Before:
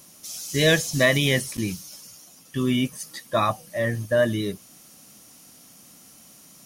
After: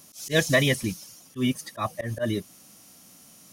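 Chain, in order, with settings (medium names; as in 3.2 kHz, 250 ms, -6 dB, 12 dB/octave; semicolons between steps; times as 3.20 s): time stretch by phase-locked vocoder 0.53×; slow attack 102 ms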